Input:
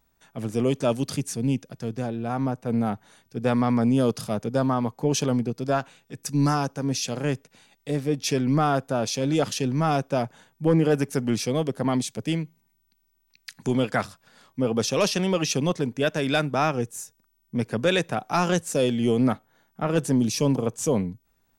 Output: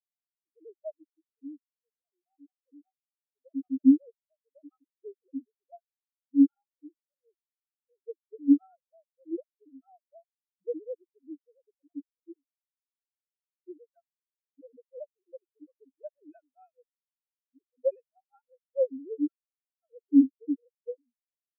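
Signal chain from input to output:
three sine waves on the formant tracks
frequency shifter +20 Hz
tape wow and flutter 17 cents
every bin expanded away from the loudest bin 4 to 1

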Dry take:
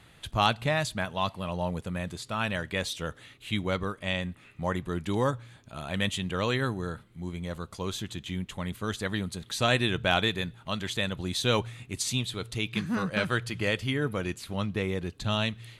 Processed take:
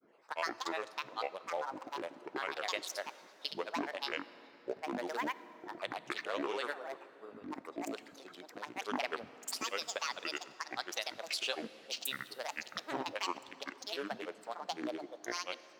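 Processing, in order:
adaptive Wiener filter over 25 samples
high-pass filter 450 Hz 24 dB per octave
downward compressor 5 to 1, threshold −35 dBFS, peak gain reduction 15 dB
granular cloud, pitch spread up and down by 12 semitones
dense smooth reverb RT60 3.9 s, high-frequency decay 0.65×, DRR 15 dB
level +2.5 dB

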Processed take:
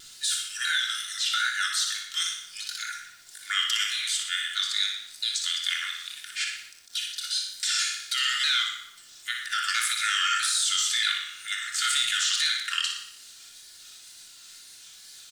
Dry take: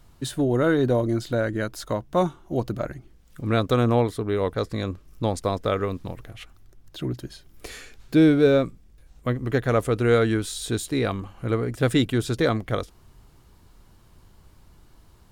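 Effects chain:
pitch shifter swept by a sawtooth −3.5 semitones, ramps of 649 ms
Butterworth high-pass 1,400 Hz 96 dB per octave
de-essing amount 85%
flat-topped bell 5,700 Hz +11.5 dB
in parallel at +2 dB: compressor whose output falls as the input rises −37 dBFS, ratio −1
on the sum: tape wow and flutter 120 cents
bit reduction 10 bits
on a send: repeating echo 60 ms, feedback 51%, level −7.5 dB
on the sum: rectangular room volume 2,600 cubic metres, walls furnished, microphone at 3.2 metres
every ending faded ahead of time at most 130 dB per second

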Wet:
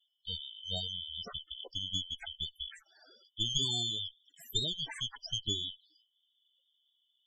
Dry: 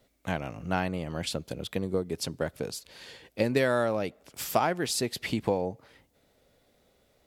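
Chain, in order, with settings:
band-splitting scrambler in four parts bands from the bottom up 3412
harmonic generator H 2 −24 dB, 3 −38 dB, 4 −6 dB, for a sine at −8 dBFS
spectral peaks only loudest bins 16
level −7 dB

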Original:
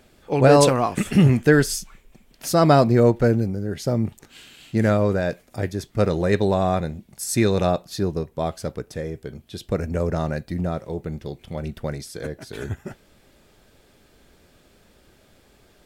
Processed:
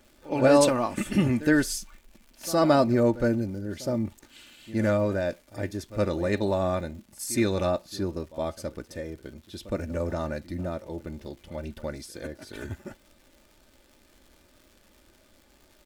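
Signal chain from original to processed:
comb filter 3.4 ms, depth 55%
surface crackle 230 per second −40 dBFS
tape wow and flutter 22 cents
echo ahead of the sound 66 ms −17 dB
level −6 dB

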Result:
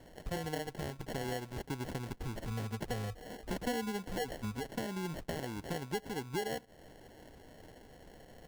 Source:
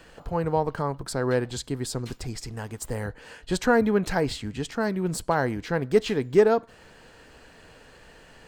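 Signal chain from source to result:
0:02.47–0:04.70: EQ curve with evenly spaced ripples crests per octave 0.93, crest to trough 17 dB
downward compressor 6 to 1, threshold −31 dBFS, peak gain reduction 20 dB
decimation without filtering 36×
level −4 dB

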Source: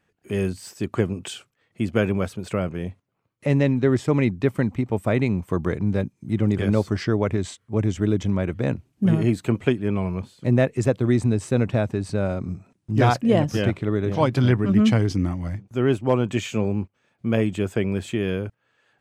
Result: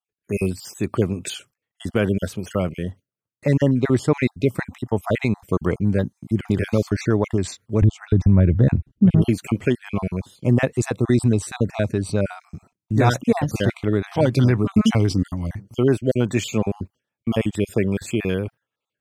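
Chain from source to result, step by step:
time-frequency cells dropped at random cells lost 34%
0:07.82–0:09.22: RIAA equalisation playback
noise gate with hold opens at −43 dBFS
high-shelf EQ 6,100 Hz +7 dB
boost into a limiter +8.5 dB
level −5.5 dB

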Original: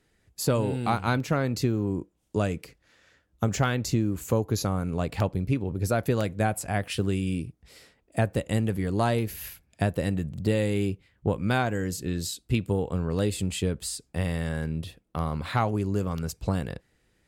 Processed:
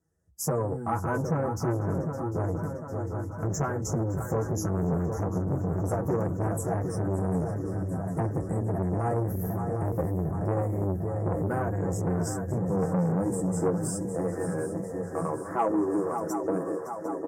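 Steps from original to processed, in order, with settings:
high-pass filter sweep 71 Hz → 370 Hz, 0:11.65–0:13.89
multi-voice chorus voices 4, 0.59 Hz, delay 12 ms, depth 1.3 ms
on a send: feedback echo with a long and a short gap by turns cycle 751 ms, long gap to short 3 to 1, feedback 66%, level −8.5 dB
on the sum: noise reduction from a noise print of the clip's start 9 dB
elliptic band-stop filter 1,800–5,500 Hz, stop band 40 dB
flat-topped bell 2,600 Hz −9 dB
in parallel at −1.5 dB: brickwall limiter −22 dBFS, peak gain reduction 9 dB
on the sum: comb filter 6.1 ms, depth 53%
saturating transformer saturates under 510 Hz
level −2.5 dB

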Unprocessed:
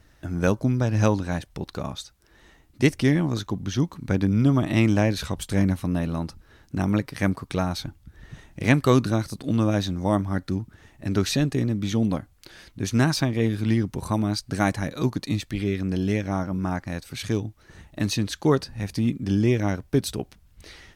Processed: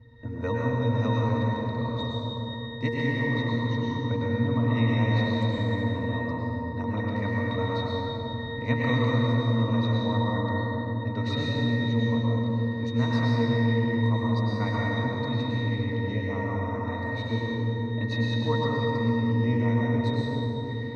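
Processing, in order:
Bessel low-pass filter 6,800 Hz, order 2
notch filter 2,100 Hz, Q 26
resonances in every octave A#, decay 0.36 s
dense smooth reverb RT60 2.9 s, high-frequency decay 0.65×, pre-delay 90 ms, DRR −4.5 dB
every bin compressed towards the loudest bin 2 to 1
level +1.5 dB

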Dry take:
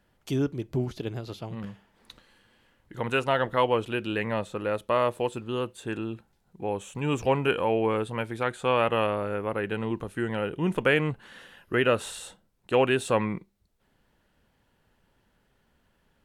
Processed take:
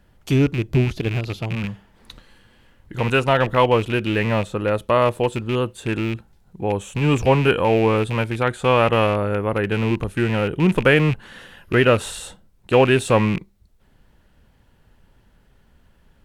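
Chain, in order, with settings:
loose part that buzzes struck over −35 dBFS, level −26 dBFS
low-shelf EQ 130 Hz +11 dB
level +6.5 dB

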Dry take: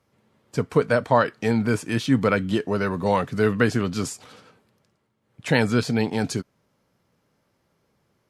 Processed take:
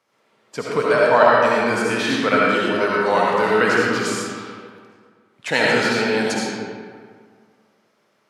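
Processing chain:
meter weighting curve A
comb and all-pass reverb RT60 1.9 s, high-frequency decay 0.6×, pre-delay 35 ms, DRR −5 dB
level +2 dB

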